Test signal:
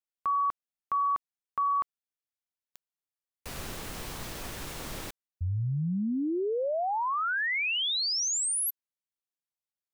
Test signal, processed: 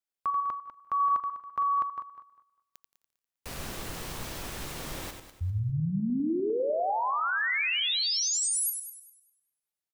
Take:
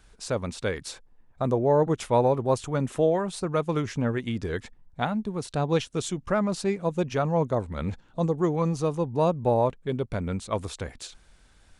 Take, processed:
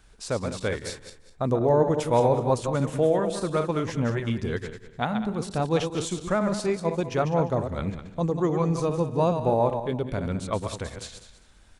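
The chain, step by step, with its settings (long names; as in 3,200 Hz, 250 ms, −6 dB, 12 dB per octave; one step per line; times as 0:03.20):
feedback delay that plays each chunk backwards 100 ms, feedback 48%, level −7 dB
on a send: repeating echo 173 ms, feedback 31%, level −23 dB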